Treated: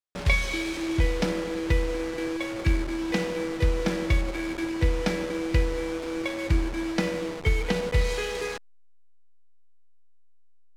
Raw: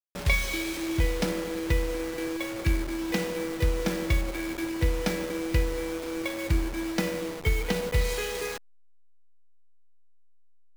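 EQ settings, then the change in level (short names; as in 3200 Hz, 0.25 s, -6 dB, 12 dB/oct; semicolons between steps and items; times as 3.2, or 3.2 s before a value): air absorption 51 m; +2.0 dB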